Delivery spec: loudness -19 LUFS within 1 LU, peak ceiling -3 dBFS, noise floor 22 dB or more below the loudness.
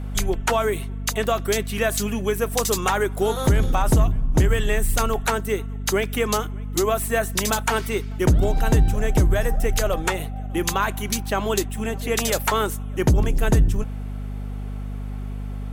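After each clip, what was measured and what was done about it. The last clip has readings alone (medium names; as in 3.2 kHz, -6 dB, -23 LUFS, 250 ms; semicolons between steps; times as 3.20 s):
hum 50 Hz; highest harmonic 250 Hz; hum level -27 dBFS; loudness -23.0 LUFS; peak level -8.5 dBFS; loudness target -19.0 LUFS
-> de-hum 50 Hz, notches 5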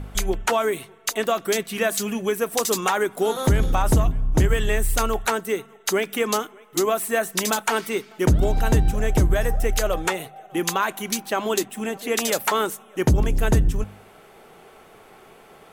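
hum not found; loudness -23.0 LUFS; peak level -9.5 dBFS; loudness target -19.0 LUFS
-> trim +4 dB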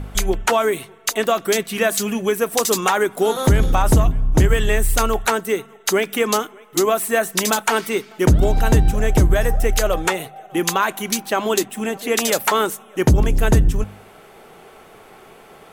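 loudness -19.0 LUFS; peak level -5.5 dBFS; noise floor -46 dBFS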